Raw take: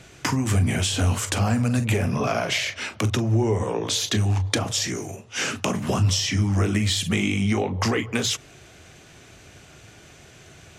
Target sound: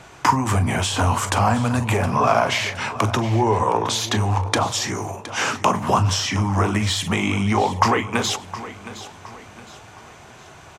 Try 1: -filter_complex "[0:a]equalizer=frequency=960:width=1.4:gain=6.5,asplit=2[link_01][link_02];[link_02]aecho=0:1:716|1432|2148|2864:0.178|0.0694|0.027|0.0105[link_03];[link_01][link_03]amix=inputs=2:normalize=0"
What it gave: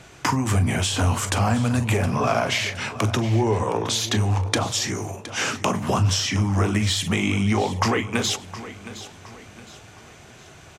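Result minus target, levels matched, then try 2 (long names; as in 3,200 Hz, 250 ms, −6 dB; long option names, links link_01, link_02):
1,000 Hz band −5.0 dB
-filter_complex "[0:a]equalizer=frequency=960:width=1.4:gain=15,asplit=2[link_01][link_02];[link_02]aecho=0:1:716|1432|2148|2864:0.178|0.0694|0.027|0.0105[link_03];[link_01][link_03]amix=inputs=2:normalize=0"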